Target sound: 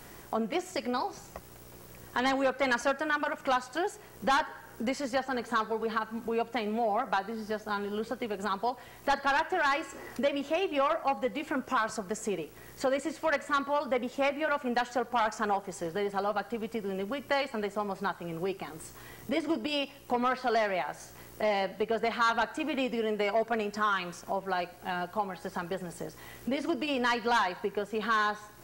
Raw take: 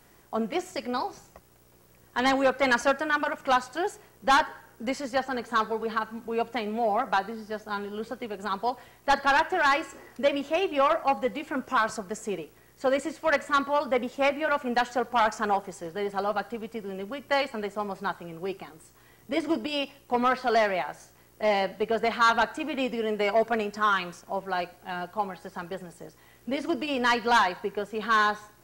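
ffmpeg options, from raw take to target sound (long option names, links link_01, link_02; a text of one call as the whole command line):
ffmpeg -i in.wav -af "acompressor=threshold=-45dB:ratio=2,volume=8.5dB" out.wav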